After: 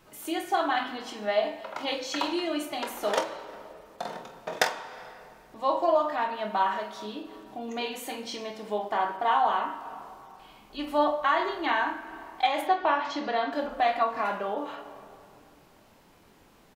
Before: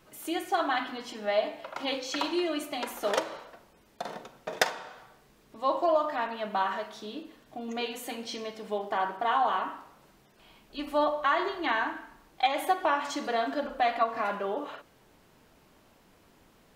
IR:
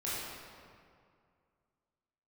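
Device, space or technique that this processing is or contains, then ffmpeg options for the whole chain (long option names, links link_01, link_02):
ducked reverb: -filter_complex "[0:a]asplit=3[link_01][link_02][link_03];[link_01]afade=type=out:start_time=12.61:duration=0.02[link_04];[link_02]lowpass=frequency=5000:width=0.5412,lowpass=frequency=5000:width=1.3066,afade=type=in:start_time=12.61:duration=0.02,afade=type=out:start_time=13.51:duration=0.02[link_05];[link_03]afade=type=in:start_time=13.51:duration=0.02[link_06];[link_04][link_05][link_06]amix=inputs=3:normalize=0,asplit=3[link_07][link_08][link_09];[1:a]atrim=start_sample=2205[link_10];[link_08][link_10]afir=irnorm=-1:irlink=0[link_11];[link_09]apad=whole_len=738739[link_12];[link_11][link_12]sidechaincompress=threshold=-43dB:ratio=8:attack=8.9:release=215,volume=-12.5dB[link_13];[link_07][link_13]amix=inputs=2:normalize=0,equalizer=frequency=880:width=4.7:gain=3,aecho=1:1:24|47:0.376|0.237"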